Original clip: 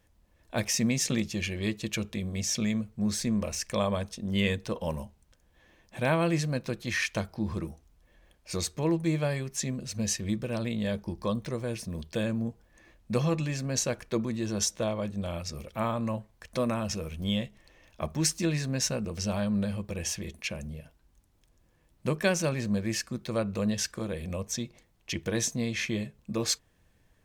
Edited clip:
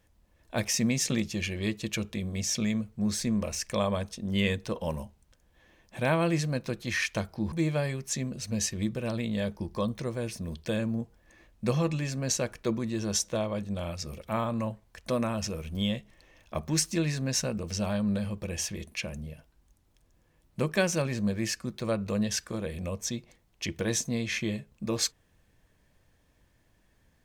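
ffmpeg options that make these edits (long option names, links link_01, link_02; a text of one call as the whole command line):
ffmpeg -i in.wav -filter_complex "[0:a]asplit=2[link_01][link_02];[link_01]atrim=end=7.522[link_03];[link_02]atrim=start=8.988[link_04];[link_03][link_04]acrossfade=duration=0.004:curve1=hsin:curve2=hsin" out.wav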